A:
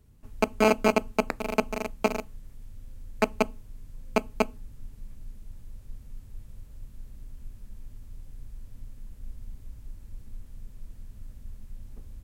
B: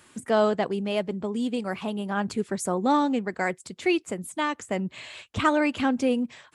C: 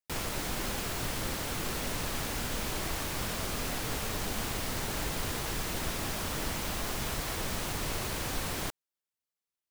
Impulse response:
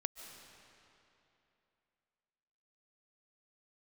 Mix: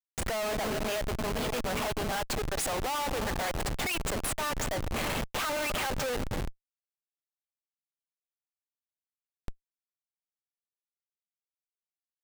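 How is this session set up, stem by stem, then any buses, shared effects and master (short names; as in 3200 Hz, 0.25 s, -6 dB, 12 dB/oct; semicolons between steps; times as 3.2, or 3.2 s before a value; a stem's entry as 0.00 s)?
-16.5 dB, 0.00 s, send -4 dB, echo send -9.5 dB, dry
+0.5 dB, 0.00 s, send -7.5 dB, no echo send, HPF 600 Hz 24 dB/oct; high shelf 8000 Hz +5.5 dB
-17.5 dB, 2.30 s, no send, echo send -17 dB, reverb removal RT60 0.68 s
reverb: on, RT60 3.0 s, pre-delay 0.105 s
echo: echo 0.782 s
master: Schmitt trigger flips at -36 dBFS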